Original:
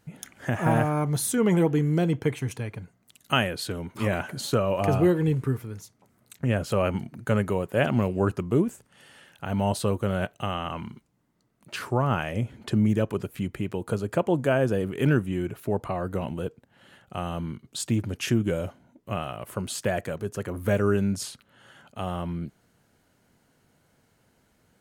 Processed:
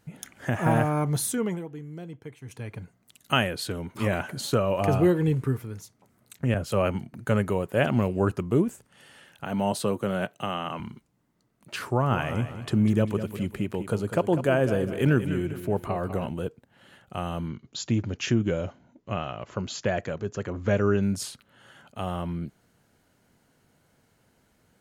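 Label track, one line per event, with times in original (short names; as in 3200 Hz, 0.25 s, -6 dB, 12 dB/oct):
1.210000	2.820000	dip -16 dB, fades 0.41 s
6.540000	7.140000	three-band expander depth 70%
9.440000	10.800000	HPF 130 Hz 24 dB/oct
11.860000	16.290000	feedback echo 0.199 s, feedback 39%, level -11 dB
17.480000	21.030000	brick-wall FIR low-pass 7400 Hz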